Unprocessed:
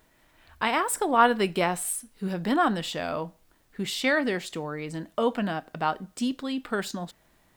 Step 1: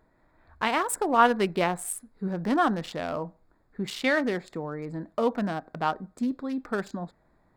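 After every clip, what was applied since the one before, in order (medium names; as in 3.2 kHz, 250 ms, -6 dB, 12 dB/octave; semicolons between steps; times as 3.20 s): local Wiener filter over 15 samples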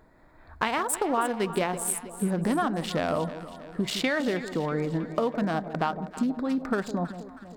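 compression 10:1, threshold -30 dBFS, peak gain reduction 17 dB; echo whose repeats swap between lows and highs 160 ms, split 830 Hz, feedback 72%, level -10.5 dB; trim +7 dB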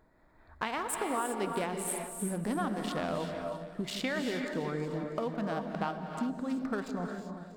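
reverberation, pre-delay 3 ms, DRR 4.5 dB; trim -7.5 dB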